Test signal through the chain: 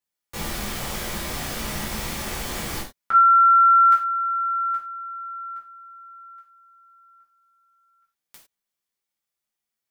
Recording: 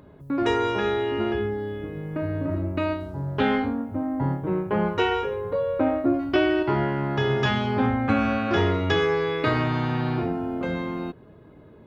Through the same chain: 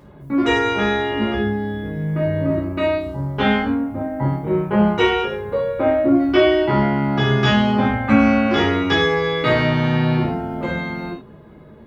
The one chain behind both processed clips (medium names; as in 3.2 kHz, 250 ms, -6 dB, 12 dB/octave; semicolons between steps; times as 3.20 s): gated-style reverb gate 130 ms falling, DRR -6 dB